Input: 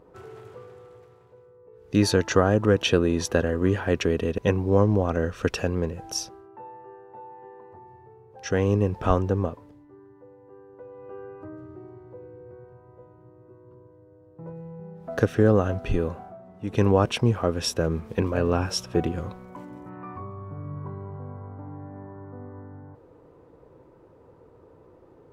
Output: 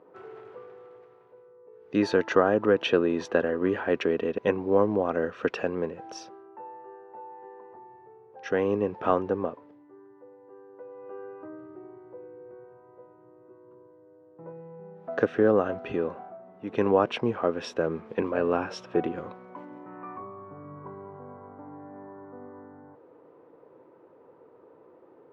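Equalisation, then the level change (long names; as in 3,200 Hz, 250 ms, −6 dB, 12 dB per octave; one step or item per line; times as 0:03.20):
band-pass filter 270–2,600 Hz
0.0 dB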